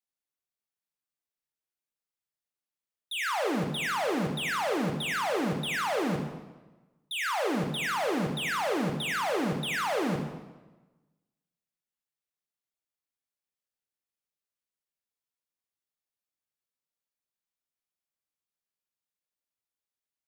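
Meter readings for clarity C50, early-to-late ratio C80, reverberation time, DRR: 6.0 dB, 7.5 dB, 1.2 s, 3.0 dB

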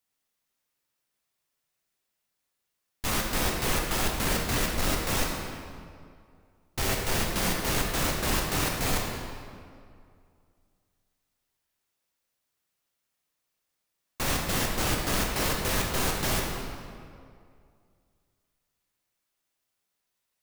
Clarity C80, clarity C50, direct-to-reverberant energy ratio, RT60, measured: 3.0 dB, 1.5 dB, -1.5 dB, 2.3 s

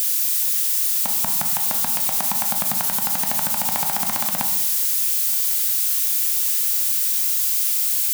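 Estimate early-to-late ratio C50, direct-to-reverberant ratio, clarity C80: 7.5 dB, 4.0 dB, 10.5 dB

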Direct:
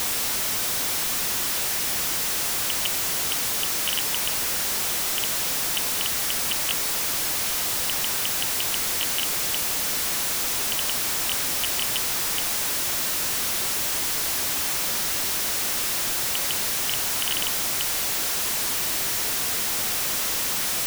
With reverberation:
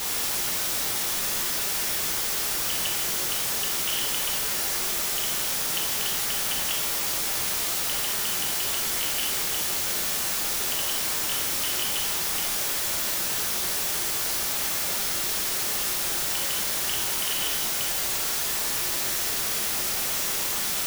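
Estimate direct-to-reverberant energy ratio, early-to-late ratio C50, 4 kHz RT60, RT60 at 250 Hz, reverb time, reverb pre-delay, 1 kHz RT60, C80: -2.5 dB, 3.0 dB, 0.95 s, 1.1 s, 1.0 s, 4 ms, 1.0 s, 5.5 dB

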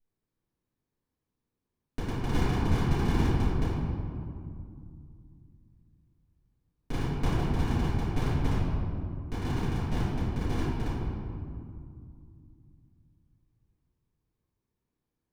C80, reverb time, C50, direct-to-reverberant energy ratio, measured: -1.0 dB, 2.3 s, -3.5 dB, -16.0 dB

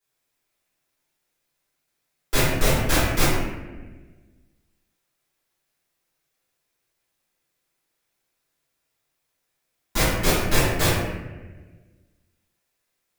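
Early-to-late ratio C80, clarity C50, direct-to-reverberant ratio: 2.0 dB, -0.5 dB, -13.0 dB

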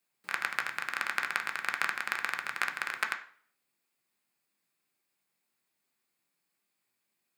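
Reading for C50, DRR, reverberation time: 12.0 dB, 4.5 dB, 0.50 s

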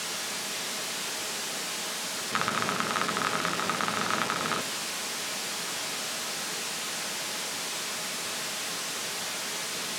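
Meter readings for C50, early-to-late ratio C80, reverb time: 13.5 dB, 16.5 dB, not exponential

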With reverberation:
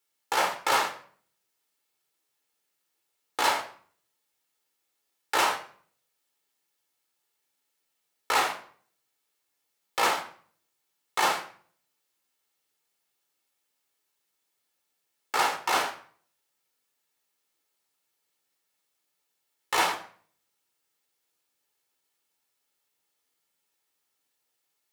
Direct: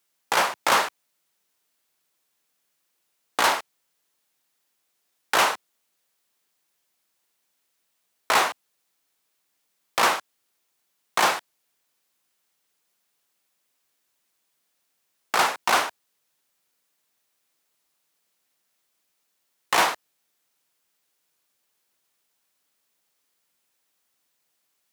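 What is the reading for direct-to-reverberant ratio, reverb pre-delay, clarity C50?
3.0 dB, 12 ms, 11.0 dB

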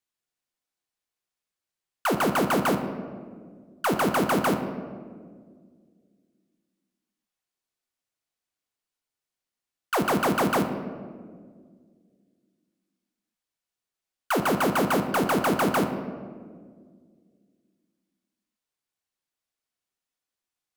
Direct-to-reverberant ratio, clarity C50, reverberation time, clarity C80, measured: 5.5 dB, 8.0 dB, 1.8 s, 9.5 dB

